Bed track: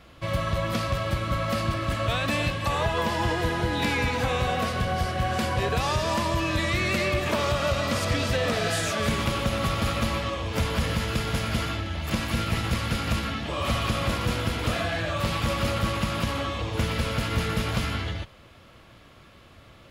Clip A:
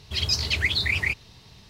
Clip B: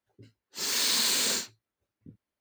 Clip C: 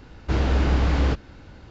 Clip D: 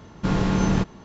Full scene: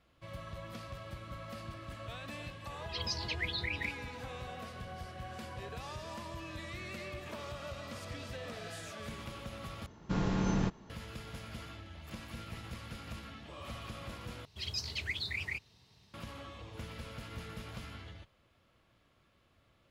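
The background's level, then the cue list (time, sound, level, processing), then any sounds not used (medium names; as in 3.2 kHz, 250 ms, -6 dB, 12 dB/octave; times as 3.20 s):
bed track -18.5 dB
2.78 s: add A -13 dB + spectral gate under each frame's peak -25 dB strong
9.86 s: replace with D -10 dB
14.45 s: replace with A -13.5 dB + high-pass 60 Hz
not used: B, C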